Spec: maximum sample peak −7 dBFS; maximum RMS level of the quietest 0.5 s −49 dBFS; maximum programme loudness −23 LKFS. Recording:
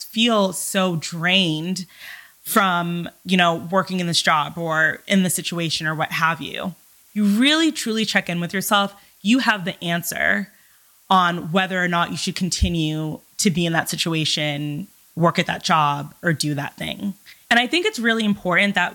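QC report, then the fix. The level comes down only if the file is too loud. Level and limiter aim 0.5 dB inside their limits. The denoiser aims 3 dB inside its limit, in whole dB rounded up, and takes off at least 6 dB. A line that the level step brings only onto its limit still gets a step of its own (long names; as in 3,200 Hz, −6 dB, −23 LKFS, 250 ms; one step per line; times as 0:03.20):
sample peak −4.0 dBFS: out of spec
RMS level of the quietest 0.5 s −54 dBFS: in spec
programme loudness −20.0 LKFS: out of spec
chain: level −3.5 dB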